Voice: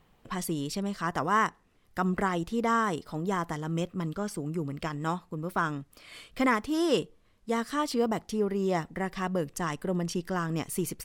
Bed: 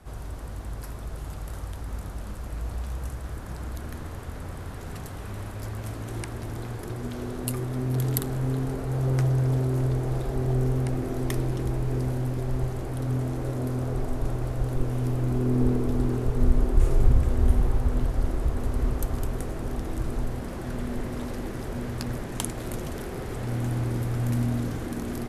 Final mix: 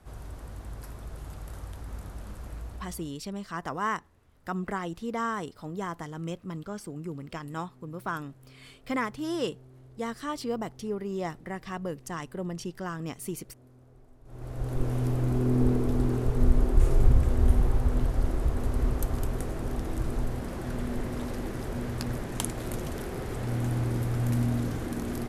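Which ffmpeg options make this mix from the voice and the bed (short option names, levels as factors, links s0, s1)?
-filter_complex "[0:a]adelay=2500,volume=0.596[s0];[1:a]volume=11.9,afade=t=out:st=2.49:d=0.67:silence=0.0749894,afade=t=in:st=14.25:d=0.63:silence=0.0473151[s1];[s0][s1]amix=inputs=2:normalize=0"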